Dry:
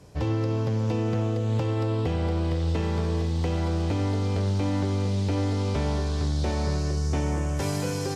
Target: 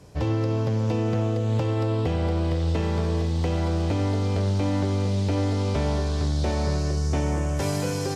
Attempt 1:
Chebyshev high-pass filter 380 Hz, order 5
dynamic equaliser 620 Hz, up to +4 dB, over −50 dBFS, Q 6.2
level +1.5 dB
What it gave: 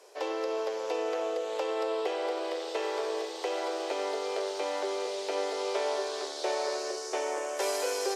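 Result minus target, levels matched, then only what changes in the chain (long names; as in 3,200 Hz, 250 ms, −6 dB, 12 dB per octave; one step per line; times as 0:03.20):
500 Hz band +6.5 dB
remove: Chebyshev high-pass filter 380 Hz, order 5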